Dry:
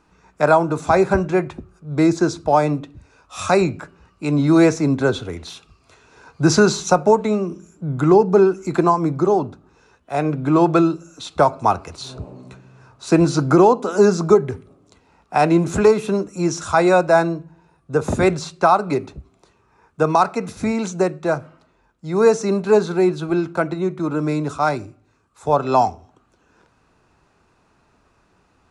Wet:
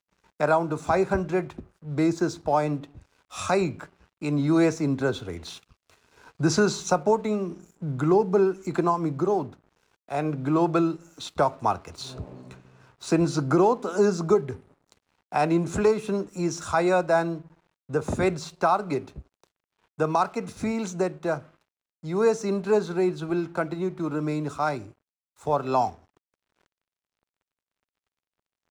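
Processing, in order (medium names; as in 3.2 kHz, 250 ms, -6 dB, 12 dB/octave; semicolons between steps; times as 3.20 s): in parallel at 0 dB: compression, threshold -29 dBFS, peak gain reduction 19.5 dB; on the sum: crossover distortion -46 dBFS; trim -8.5 dB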